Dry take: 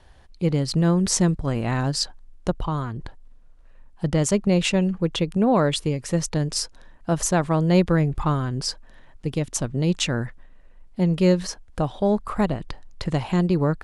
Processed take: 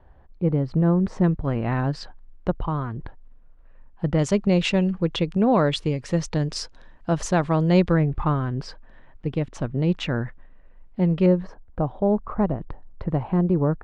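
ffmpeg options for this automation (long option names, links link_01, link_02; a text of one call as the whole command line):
ffmpeg -i in.wav -af "asetnsamples=nb_out_samples=441:pad=0,asendcmd='1.24 lowpass f 2200;4.19 lowpass f 4600;7.94 lowpass f 2400;11.26 lowpass f 1100',lowpass=1200" out.wav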